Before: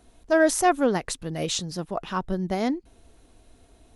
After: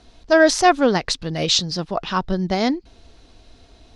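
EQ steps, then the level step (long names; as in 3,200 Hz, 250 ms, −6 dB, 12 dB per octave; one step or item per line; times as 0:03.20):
low-pass with resonance 4,800 Hz, resonance Q 2.3
parametric band 340 Hz −2 dB 1.7 octaves
+6.5 dB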